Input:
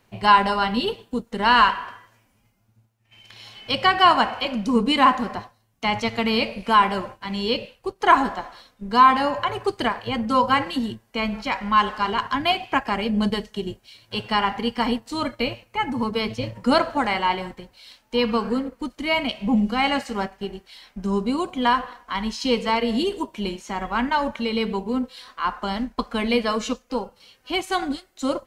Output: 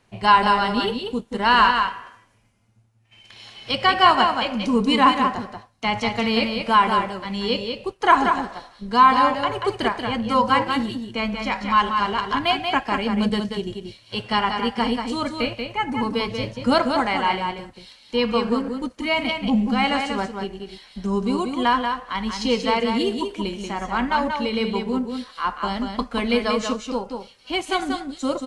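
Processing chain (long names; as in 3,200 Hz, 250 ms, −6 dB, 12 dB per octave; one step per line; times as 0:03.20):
single-tap delay 185 ms −5.5 dB
AAC 64 kbit/s 24,000 Hz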